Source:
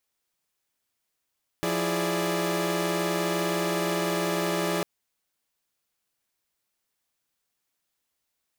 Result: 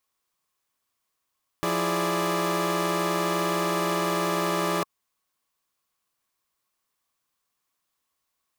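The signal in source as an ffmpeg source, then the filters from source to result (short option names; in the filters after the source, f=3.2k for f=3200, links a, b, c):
-f lavfi -i "aevalsrc='0.0398*((2*mod(174.61*t,1)-1)+(2*mod(329.63*t,1)-1)+(2*mod(415.3*t,1)-1)+(2*mod(587.33*t,1)-1))':d=3.2:s=44100"
-af "equalizer=f=1.1k:t=o:w=0.25:g=12"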